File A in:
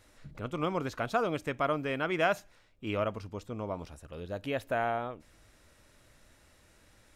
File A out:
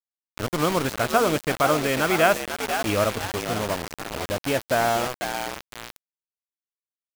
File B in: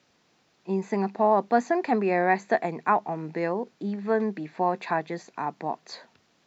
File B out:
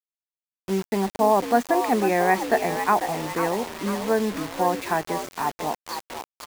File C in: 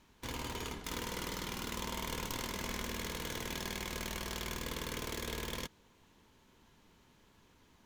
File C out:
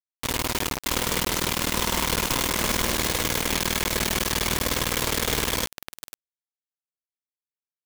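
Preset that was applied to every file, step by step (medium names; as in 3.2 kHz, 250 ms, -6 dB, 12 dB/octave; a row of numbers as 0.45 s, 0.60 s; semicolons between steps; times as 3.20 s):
frequency-shifting echo 497 ms, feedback 47%, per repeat +74 Hz, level -8.5 dB; word length cut 6-bit, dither none; normalise loudness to -24 LUFS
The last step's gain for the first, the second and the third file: +8.5 dB, +2.0 dB, +13.5 dB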